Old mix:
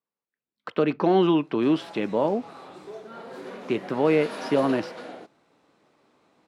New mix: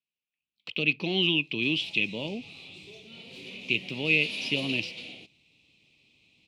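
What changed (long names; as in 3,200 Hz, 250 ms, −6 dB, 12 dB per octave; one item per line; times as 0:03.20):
background: add low-shelf EQ 110 Hz +10.5 dB
master: add drawn EQ curve 110 Hz 0 dB, 1,600 Hz −25 dB, 2,500 Hz +15 dB, 5,400 Hz +3 dB, 11,000 Hz −3 dB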